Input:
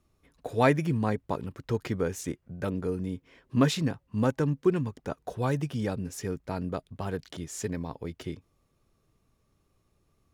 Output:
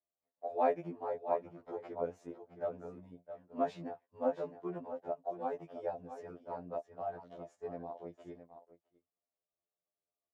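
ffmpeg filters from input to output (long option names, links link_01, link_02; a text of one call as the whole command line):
ffmpeg -i in.wav -filter_complex "[0:a]bandpass=frequency=670:width_type=q:width=4.4:csg=0,asplit=2[link_01][link_02];[link_02]aecho=0:1:664:0.299[link_03];[link_01][link_03]amix=inputs=2:normalize=0,agate=range=-17dB:threshold=-58dB:ratio=16:detection=peak,afftfilt=real='re*2*eq(mod(b,4),0)':imag='im*2*eq(mod(b,4),0)':win_size=2048:overlap=0.75,volume=5dB" out.wav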